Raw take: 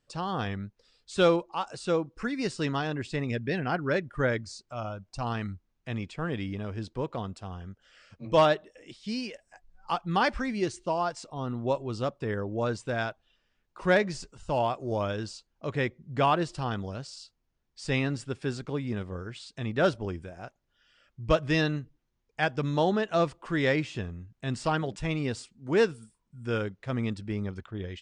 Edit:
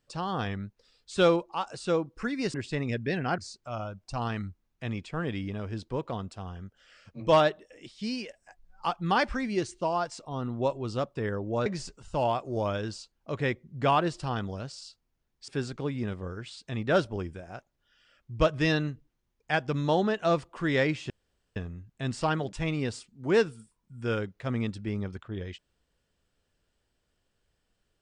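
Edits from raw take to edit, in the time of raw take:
2.54–2.95 cut
3.79–4.43 cut
12.71–14.01 cut
17.83–18.37 cut
23.99 insert room tone 0.46 s

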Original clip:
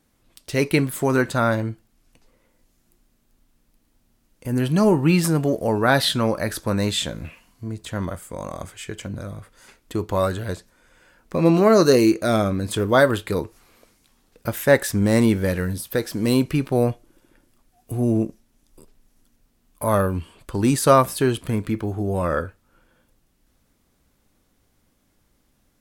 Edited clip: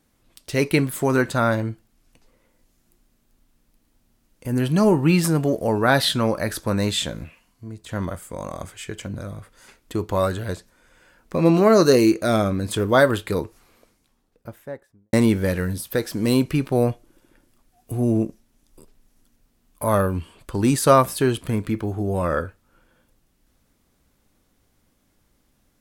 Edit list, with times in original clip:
7.24–7.89 gain -5.5 dB
13.33–15.13 studio fade out

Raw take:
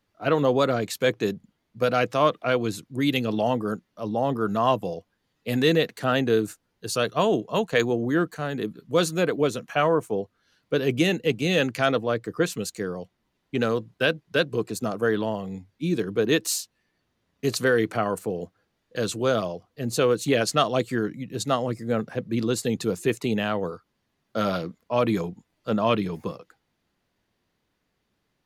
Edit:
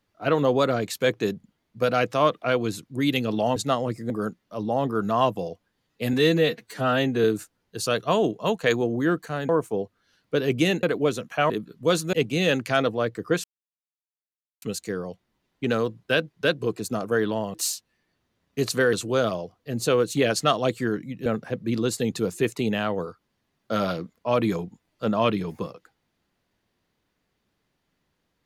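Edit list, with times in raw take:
5.59–6.33 stretch 1.5×
8.58–9.21 swap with 9.88–11.22
12.53 insert silence 1.18 s
15.45–16.4 cut
17.79–19.04 cut
21.37–21.91 move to 3.56

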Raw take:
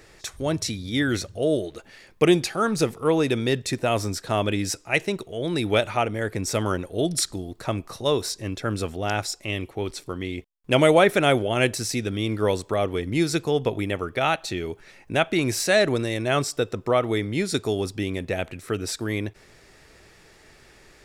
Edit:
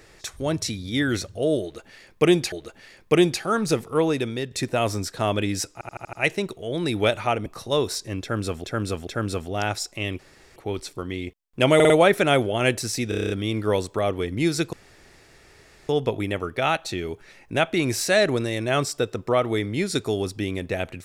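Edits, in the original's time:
1.62–2.52 loop, 2 plays
3.09–3.61 fade out, to -8.5 dB
4.83 stutter 0.08 s, 6 plays
6.16–7.8 cut
8.55–8.98 loop, 3 plays
9.67 insert room tone 0.37 s
10.86 stutter 0.05 s, 4 plays
12.05 stutter 0.03 s, 8 plays
13.48 insert room tone 1.16 s

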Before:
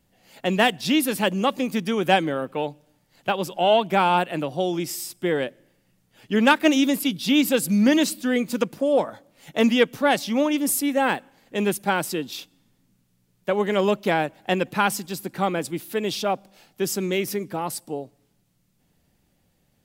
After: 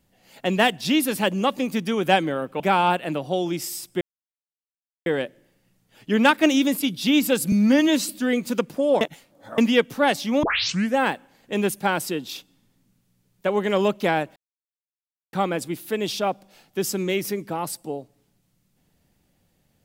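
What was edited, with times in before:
2.6–3.87 cut
5.28 insert silence 1.05 s
7.74–8.12 stretch 1.5×
9.04–9.61 reverse
10.46 tape start 0.53 s
14.39–15.36 mute

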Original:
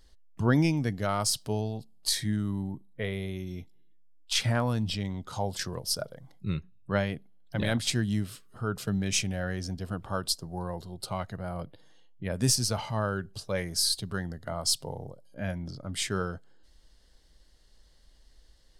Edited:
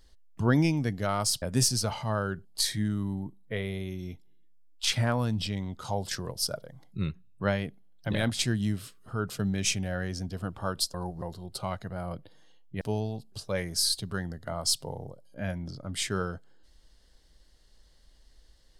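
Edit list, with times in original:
1.42–1.93 swap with 12.29–13.32
10.42–10.7 reverse

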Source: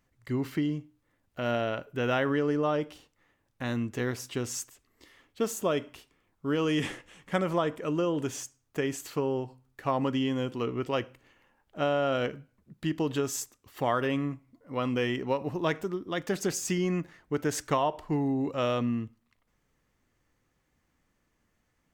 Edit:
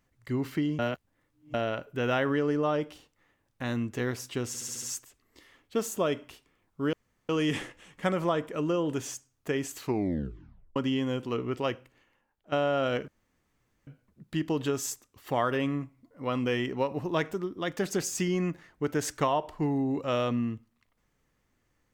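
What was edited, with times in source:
0.79–1.54 reverse
4.47 stutter 0.07 s, 6 plays
6.58 insert room tone 0.36 s
9.07 tape stop 0.98 s
10.89–11.81 fade out, to -13.5 dB
12.37 insert room tone 0.79 s

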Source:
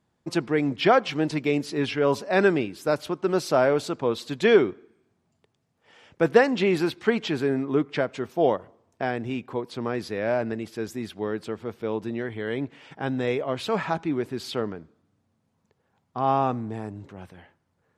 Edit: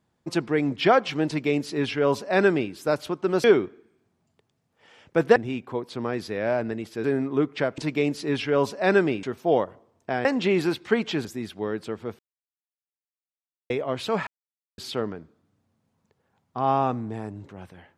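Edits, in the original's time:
1.27–2.72 copy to 8.15
3.44–4.49 cut
6.41–7.41 swap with 9.17–10.85
11.79–13.3 mute
13.87–14.38 mute

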